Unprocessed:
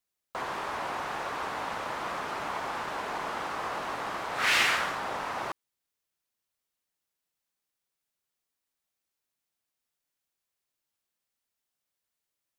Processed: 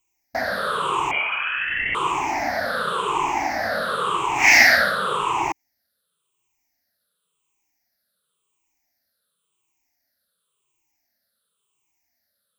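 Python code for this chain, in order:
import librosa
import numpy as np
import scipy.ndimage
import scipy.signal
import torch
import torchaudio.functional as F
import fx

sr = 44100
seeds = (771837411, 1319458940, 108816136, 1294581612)

y = fx.spec_ripple(x, sr, per_octave=0.69, drift_hz=-0.93, depth_db=23)
y = fx.freq_invert(y, sr, carrier_hz=3200, at=(1.11, 1.95))
y = y * librosa.db_to_amplitude(5.0)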